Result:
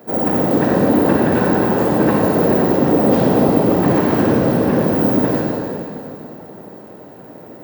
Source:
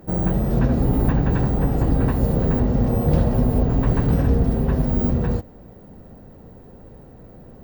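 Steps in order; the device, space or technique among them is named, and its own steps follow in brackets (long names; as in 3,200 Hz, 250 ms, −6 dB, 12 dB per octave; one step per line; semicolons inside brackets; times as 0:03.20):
whispering ghost (random phases in short frames; high-pass filter 280 Hz 12 dB per octave; convolution reverb RT60 2.8 s, pre-delay 32 ms, DRR −3 dB)
level +6.5 dB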